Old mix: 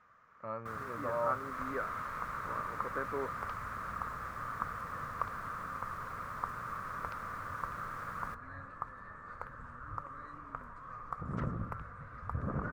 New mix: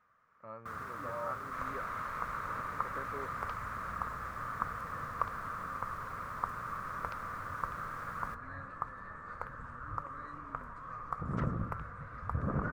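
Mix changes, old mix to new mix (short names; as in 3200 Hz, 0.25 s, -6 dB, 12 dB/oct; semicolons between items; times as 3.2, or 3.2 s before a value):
speech -7.5 dB; reverb: on, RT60 0.30 s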